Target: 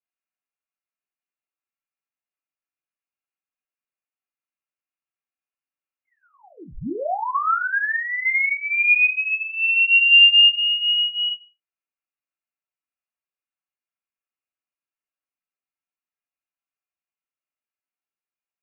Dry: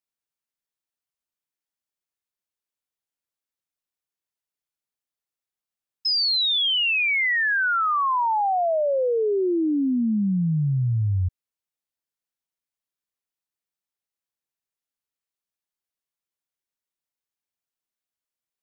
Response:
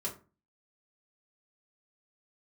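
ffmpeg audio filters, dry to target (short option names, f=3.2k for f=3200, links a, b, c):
-filter_complex "[0:a]asplit=3[a][b][c];[a]afade=t=out:st=9.88:d=0.02[d];[b]lowshelf=f=320:g=11.5,afade=t=in:st=9.88:d=0.02,afade=t=out:st=10.44:d=0.02[e];[c]afade=t=in:st=10.44:d=0.02[f];[d][e][f]amix=inputs=3:normalize=0[g];[1:a]atrim=start_sample=2205,asetrate=61740,aresample=44100[h];[g][h]afir=irnorm=-1:irlink=0,lowpass=f=2.6k:t=q:w=0.5098,lowpass=f=2.6k:t=q:w=0.6013,lowpass=f=2.6k:t=q:w=0.9,lowpass=f=2.6k:t=q:w=2.563,afreqshift=-3000"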